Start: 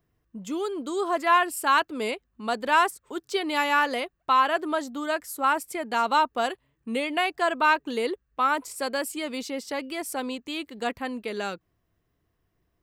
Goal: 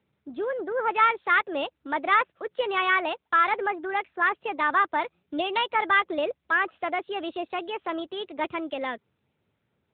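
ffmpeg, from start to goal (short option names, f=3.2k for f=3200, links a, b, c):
-af "asetrate=56889,aresample=44100,aeval=exprs='0.335*(cos(1*acos(clip(val(0)/0.335,-1,1)))-cos(1*PI/2))+0.0106*(cos(5*acos(clip(val(0)/0.335,-1,1)))-cos(5*PI/2))':c=same" -ar 8000 -c:a libopencore_amrnb -b:a 10200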